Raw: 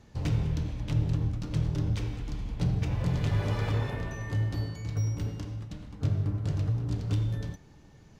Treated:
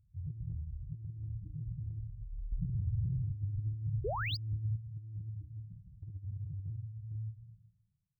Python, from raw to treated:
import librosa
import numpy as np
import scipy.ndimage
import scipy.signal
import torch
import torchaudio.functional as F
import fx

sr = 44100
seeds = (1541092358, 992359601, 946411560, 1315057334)

y = fx.fade_out_tail(x, sr, length_s=1.93)
y = fx.spec_topn(y, sr, count=2)
y = fx.high_shelf(y, sr, hz=4300.0, db=11.0)
y = fx.hum_notches(y, sr, base_hz=60, count=5)
y = fx.echo_feedback(y, sr, ms=157, feedback_pct=20, wet_db=-7)
y = fx.over_compress(y, sr, threshold_db=-32.0, ratio=-0.5)
y = fx.spec_paint(y, sr, seeds[0], shape='rise', start_s=4.04, length_s=0.33, low_hz=360.0, high_hz=5200.0, level_db=-30.0)
y = fx.low_shelf(y, sr, hz=340.0, db=7.5, at=(2.52, 4.76))
y = np.interp(np.arange(len(y)), np.arange(len(y))[::2], y[::2])
y = y * librosa.db_to_amplitude(-7.5)